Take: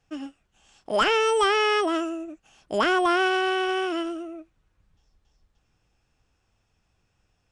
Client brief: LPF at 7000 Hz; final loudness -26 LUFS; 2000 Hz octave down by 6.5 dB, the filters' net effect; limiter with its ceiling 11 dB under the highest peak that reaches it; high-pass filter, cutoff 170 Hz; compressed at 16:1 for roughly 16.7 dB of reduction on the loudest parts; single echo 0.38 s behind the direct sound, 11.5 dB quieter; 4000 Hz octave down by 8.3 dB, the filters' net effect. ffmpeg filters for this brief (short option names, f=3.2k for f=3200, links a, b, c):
-af "highpass=170,lowpass=7k,equalizer=f=2k:t=o:g=-8,equalizer=f=4k:t=o:g=-8,acompressor=threshold=-37dB:ratio=16,alimiter=level_in=12dB:limit=-24dB:level=0:latency=1,volume=-12dB,aecho=1:1:380:0.266,volume=17dB"